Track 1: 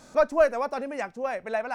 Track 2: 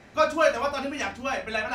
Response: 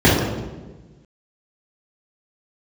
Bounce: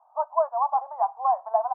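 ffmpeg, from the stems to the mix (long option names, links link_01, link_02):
-filter_complex "[0:a]crystalizer=i=4:c=0,volume=-0.5dB,asplit=2[link_01][link_02];[1:a]adelay=11,volume=-10dB[link_03];[link_02]apad=whole_len=77308[link_04];[link_03][link_04]sidechaincompress=threshold=-31dB:ratio=8:attack=29:release=517[link_05];[link_01][link_05]amix=inputs=2:normalize=0,dynaudnorm=framelen=130:gausssize=3:maxgain=13.5dB,asuperpass=centerf=870:order=8:qfactor=2.2"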